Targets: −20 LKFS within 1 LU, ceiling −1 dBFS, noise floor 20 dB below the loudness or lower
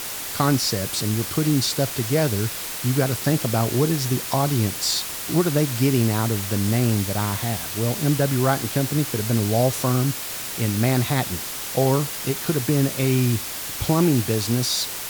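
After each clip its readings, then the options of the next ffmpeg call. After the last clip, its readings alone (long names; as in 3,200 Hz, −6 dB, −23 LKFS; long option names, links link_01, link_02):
background noise floor −31 dBFS; target noise floor −42 dBFS; integrated loudness −22.0 LKFS; sample peak −7.0 dBFS; target loudness −20.0 LKFS
→ -af "afftdn=noise_reduction=11:noise_floor=-31"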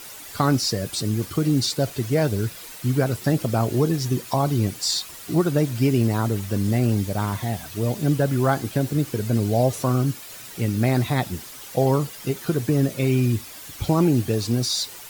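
background noise floor −40 dBFS; target noise floor −43 dBFS
→ -af "afftdn=noise_reduction=6:noise_floor=-40"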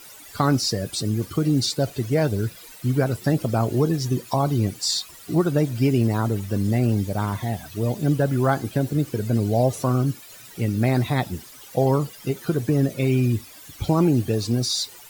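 background noise floor −44 dBFS; integrated loudness −23.0 LKFS; sample peak −7.5 dBFS; target loudness −20.0 LKFS
→ -af "volume=3dB"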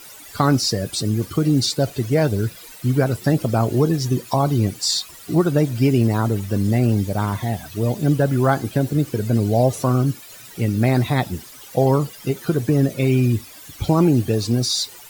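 integrated loudness −20.0 LKFS; sample peak −4.5 dBFS; background noise floor −41 dBFS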